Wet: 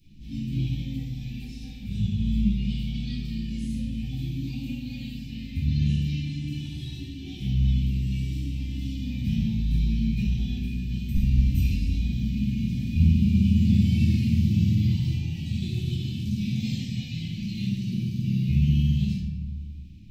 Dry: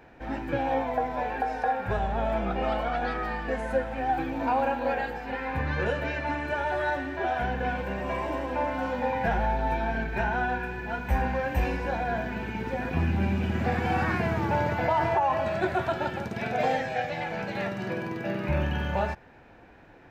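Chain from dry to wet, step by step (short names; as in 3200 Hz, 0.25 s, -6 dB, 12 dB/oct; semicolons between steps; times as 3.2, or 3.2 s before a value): inverse Chebyshev band-stop 420–1600 Hz, stop band 50 dB; bell 420 Hz +13.5 dB 0.97 oct; 9.68–11.15 negative-ratio compressor -30 dBFS, ratio -0.5; shoebox room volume 410 m³, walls mixed, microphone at 4.1 m; gain -3 dB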